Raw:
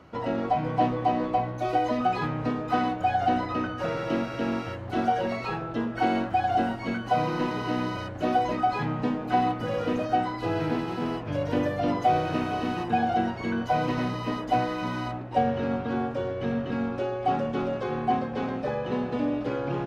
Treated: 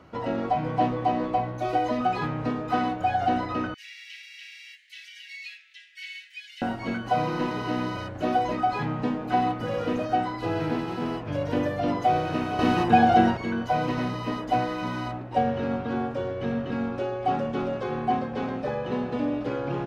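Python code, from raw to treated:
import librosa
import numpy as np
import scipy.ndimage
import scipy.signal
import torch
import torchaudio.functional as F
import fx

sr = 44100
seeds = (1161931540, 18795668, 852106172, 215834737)

y = fx.steep_highpass(x, sr, hz=1900.0, slope=72, at=(3.74, 6.62))
y = fx.edit(y, sr, fx.clip_gain(start_s=12.59, length_s=0.78, db=7.0), tone=tone)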